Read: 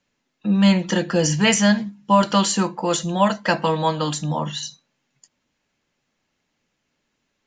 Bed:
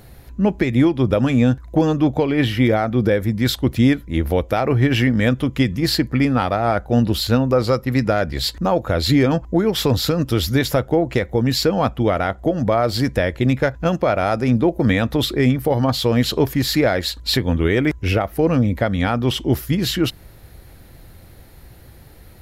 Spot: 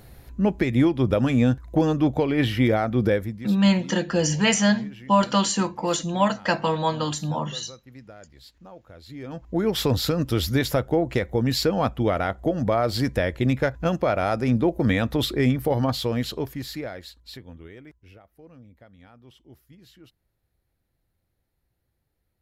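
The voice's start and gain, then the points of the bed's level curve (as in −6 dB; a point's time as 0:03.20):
3.00 s, −3.0 dB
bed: 0:03.15 −4 dB
0:03.62 −27 dB
0:09.09 −27 dB
0:09.64 −4.5 dB
0:15.81 −4.5 dB
0:18.18 −32 dB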